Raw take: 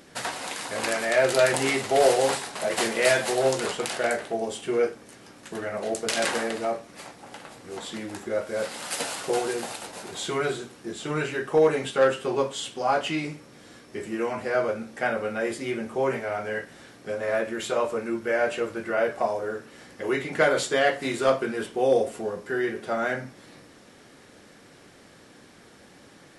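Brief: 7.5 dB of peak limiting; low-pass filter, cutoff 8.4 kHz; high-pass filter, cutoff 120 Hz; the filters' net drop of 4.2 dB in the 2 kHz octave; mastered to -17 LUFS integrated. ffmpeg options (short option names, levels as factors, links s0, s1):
-af "highpass=120,lowpass=8400,equalizer=f=2000:t=o:g=-5.5,volume=4.22,alimiter=limit=0.562:level=0:latency=1"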